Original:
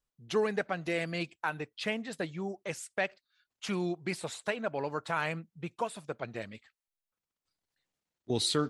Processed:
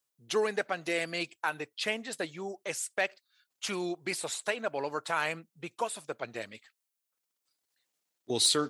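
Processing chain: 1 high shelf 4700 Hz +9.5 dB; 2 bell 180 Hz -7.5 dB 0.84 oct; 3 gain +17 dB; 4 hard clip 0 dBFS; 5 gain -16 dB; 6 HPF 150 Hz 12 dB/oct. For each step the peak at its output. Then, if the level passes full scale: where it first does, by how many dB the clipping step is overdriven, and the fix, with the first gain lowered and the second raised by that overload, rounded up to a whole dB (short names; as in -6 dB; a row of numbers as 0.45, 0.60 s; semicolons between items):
-13.0, -13.0, +4.0, 0.0, -16.0, -15.5 dBFS; step 3, 4.0 dB; step 3 +13 dB, step 5 -12 dB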